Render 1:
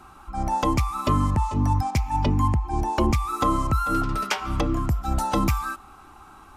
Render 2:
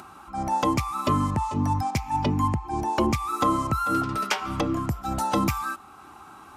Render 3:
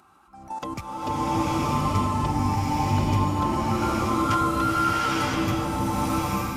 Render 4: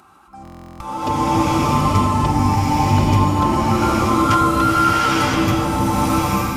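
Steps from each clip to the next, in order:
HPF 110 Hz 12 dB/oct; upward compressor, threshold -41 dBFS
level quantiser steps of 13 dB; bloom reverb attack 0.93 s, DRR -11 dB; gain -5.5 dB
stuck buffer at 0.43, samples 1024, times 15; gain +7.5 dB

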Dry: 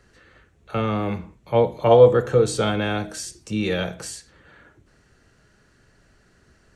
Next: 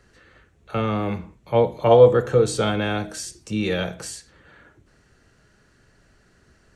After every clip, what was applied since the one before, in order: nothing audible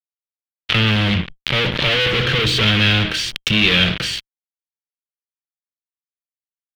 fuzz box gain 37 dB, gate -38 dBFS; EQ curve 140 Hz 0 dB, 800 Hz -12 dB, 3200 Hz +11 dB, 7500 Hz -17 dB; backwards sustainer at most 65 dB/s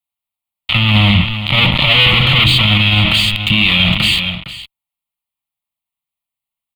fixed phaser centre 1600 Hz, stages 6; echo 0.459 s -15 dB; maximiser +13 dB; gain -1 dB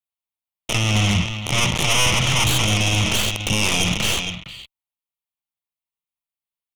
tracing distortion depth 0.16 ms; gain -8 dB

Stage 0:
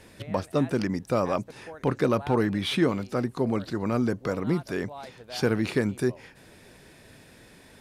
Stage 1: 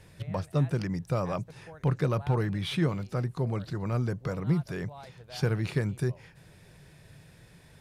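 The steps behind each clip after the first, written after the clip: resonant low shelf 190 Hz +6 dB, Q 3; gain -5.5 dB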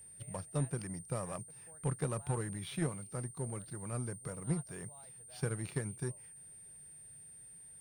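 whine 8900 Hz -36 dBFS; power-law curve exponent 1.4; gain -6 dB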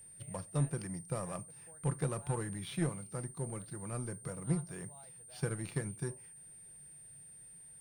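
reverb RT60 0.25 s, pre-delay 6 ms, DRR 12 dB

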